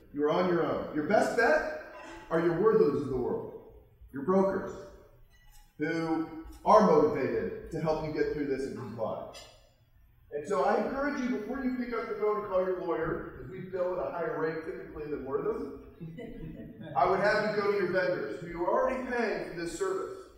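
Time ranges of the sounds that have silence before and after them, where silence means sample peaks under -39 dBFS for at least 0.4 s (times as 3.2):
4.15–4.86
5.8–9.42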